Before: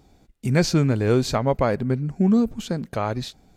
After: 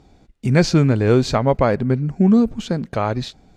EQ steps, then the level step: air absorption 57 m; +4.5 dB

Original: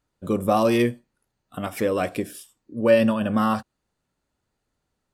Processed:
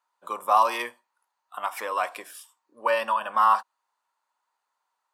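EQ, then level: resonant high-pass 970 Hz, resonance Q 5.3; -3.0 dB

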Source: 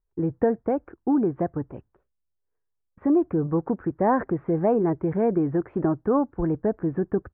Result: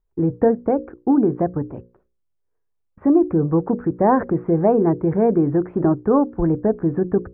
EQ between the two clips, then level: high shelf 2100 Hz -11 dB; notches 60/120/180/240/300/360/420/480/540 Hz; +6.5 dB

